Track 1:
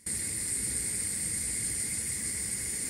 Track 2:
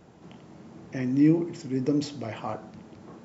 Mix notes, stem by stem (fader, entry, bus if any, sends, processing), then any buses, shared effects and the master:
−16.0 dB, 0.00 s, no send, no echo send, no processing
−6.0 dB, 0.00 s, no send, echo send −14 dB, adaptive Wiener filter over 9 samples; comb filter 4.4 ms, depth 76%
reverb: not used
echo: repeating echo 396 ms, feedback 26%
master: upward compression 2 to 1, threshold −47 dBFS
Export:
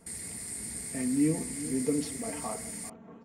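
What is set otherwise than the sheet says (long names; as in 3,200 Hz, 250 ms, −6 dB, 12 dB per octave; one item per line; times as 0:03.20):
stem 1 −16.0 dB → −7.0 dB
master: missing upward compression 2 to 1, threshold −47 dBFS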